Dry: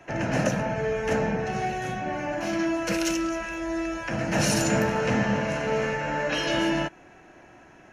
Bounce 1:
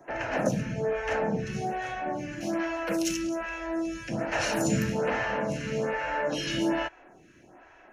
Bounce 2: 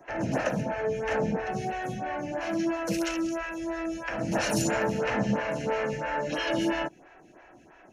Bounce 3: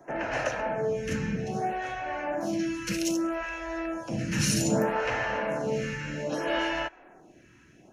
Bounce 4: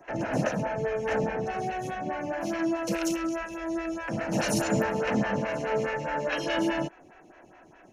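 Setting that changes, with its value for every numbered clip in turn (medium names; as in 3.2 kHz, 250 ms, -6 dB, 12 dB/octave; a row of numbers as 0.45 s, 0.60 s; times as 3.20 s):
lamp-driven phase shifter, rate: 1.2 Hz, 3 Hz, 0.63 Hz, 4.8 Hz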